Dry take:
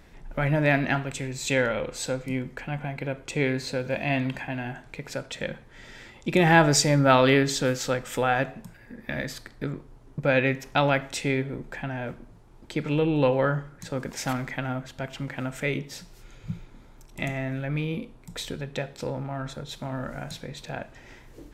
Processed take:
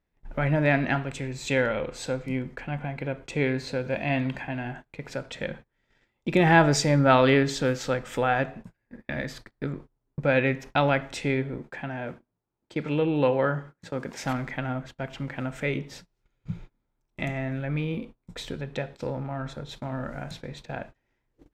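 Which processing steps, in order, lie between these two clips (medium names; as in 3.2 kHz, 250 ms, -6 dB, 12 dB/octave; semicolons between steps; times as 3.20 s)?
11.58–14.24 s: high-pass 140 Hz 6 dB/octave; gate -41 dBFS, range -27 dB; low-pass 3.6 kHz 6 dB/octave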